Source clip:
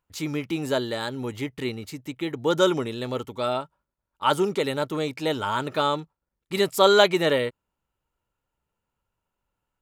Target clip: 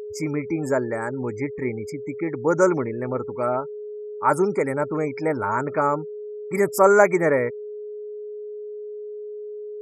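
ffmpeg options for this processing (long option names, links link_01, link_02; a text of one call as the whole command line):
ffmpeg -i in.wav -af "afftfilt=real='re*gte(hypot(re,im),0.01)':imag='im*gte(hypot(re,im),0.01)':win_size=1024:overlap=0.75,aeval=exprs='val(0)+0.02*sin(2*PI*420*n/s)':channel_layout=same,asuperstop=centerf=3400:order=20:qfactor=1.4,volume=2.5dB" out.wav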